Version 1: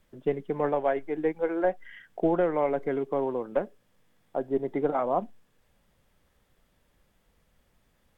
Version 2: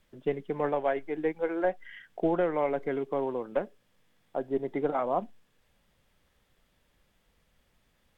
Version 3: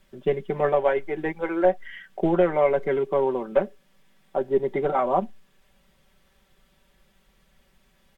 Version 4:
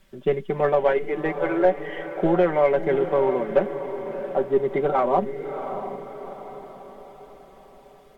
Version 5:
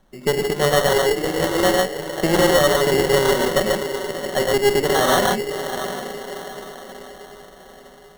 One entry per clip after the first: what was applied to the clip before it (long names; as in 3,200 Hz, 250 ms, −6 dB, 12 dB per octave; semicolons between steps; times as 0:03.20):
parametric band 3,200 Hz +4.5 dB 1.9 octaves; level −2.5 dB
comb filter 5.2 ms, depth 70%; level +5 dB
in parallel at −10 dB: soft clipping −22.5 dBFS, distortion −8 dB; on the sum: feedback delay with all-pass diffusion 669 ms, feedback 48%, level −9.5 dB
reverb whose tail is shaped and stops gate 170 ms rising, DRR −1 dB; tube saturation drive 14 dB, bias 0.7; decimation without filtering 18×; level +5 dB